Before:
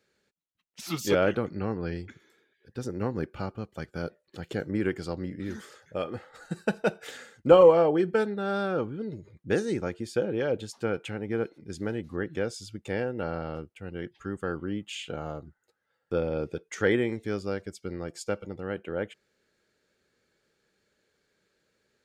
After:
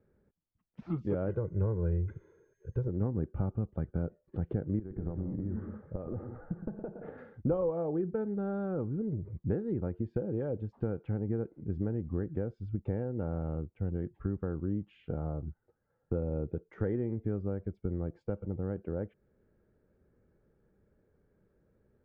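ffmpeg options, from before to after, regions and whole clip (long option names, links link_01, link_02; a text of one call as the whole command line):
ffmpeg -i in.wav -filter_complex "[0:a]asettb=1/sr,asplit=3[link_01][link_02][link_03];[link_01]atrim=end=1.294[link_04];[link_02]atrim=start=1.29:end=2.88,asetpts=PTS-STARTPTS,afade=type=in:duration=0.004:curve=qsin,afade=type=out:start_time=1.586:duration=0.004:curve=qsin,aecho=1:1:2:0.81,atrim=end_sample=70119,aeval=exprs='val(0)+0.00631*sin(2*PI*6400*n/s)':channel_layout=same[link_05];[link_03]atrim=start=2.876[link_06];[link_04][link_05]acrossfade=duration=0.004:curve1=hsin:curve2=qsin[link_07];[link_07][link_06]acrossfade=duration=0.004:curve1=qsin:curve2=hsin,asettb=1/sr,asplit=3[link_08][link_09][link_10];[link_08]atrim=end=4.794[link_11];[link_09]atrim=start=4.79:end=7.18,asetpts=PTS-STARTPTS,afade=type=in:duration=0.004:curve=qsin,afade=type=out:start_time=2.386:duration=0.004:curve=qsin,lowpass=1500,acompressor=threshold=-36dB:ratio=16:attack=3.2:release=140:knee=1:detection=peak,aecho=1:1:115|174|207:0.316|0.251|0.178,atrim=end_sample=105399[link_12];[link_10]atrim=start=7.176[link_13];[link_11][link_12]acrossfade=duration=0.004:curve1=hsin:curve2=qsin[link_14];[link_14][link_13]acrossfade=duration=0.004:curve1=qsin:curve2=hsin,acompressor=threshold=-40dB:ratio=2.5,lowpass=1100,aemphasis=mode=reproduction:type=riaa" out.wav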